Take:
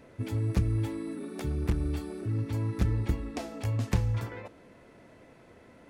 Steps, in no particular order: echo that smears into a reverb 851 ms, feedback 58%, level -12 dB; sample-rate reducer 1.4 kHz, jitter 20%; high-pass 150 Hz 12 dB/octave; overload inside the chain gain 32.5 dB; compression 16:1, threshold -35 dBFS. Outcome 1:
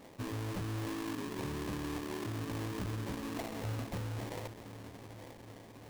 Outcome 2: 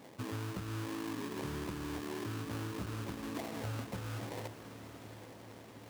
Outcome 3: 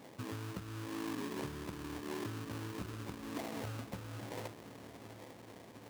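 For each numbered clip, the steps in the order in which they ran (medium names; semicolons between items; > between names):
high-pass > overload inside the chain > compression > echo that smears into a reverb > sample-rate reducer; sample-rate reducer > high-pass > compression > echo that smears into a reverb > overload inside the chain; compression > echo that smears into a reverb > sample-rate reducer > high-pass > overload inside the chain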